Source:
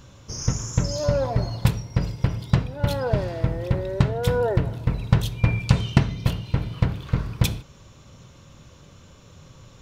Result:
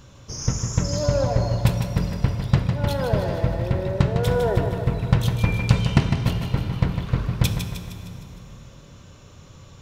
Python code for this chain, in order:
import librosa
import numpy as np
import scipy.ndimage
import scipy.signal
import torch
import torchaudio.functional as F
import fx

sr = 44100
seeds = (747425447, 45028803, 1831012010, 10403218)

y = fx.echo_feedback(x, sr, ms=154, feedback_pct=53, wet_db=-7)
y = fx.rev_plate(y, sr, seeds[0], rt60_s=3.8, hf_ratio=0.6, predelay_ms=0, drr_db=9.0)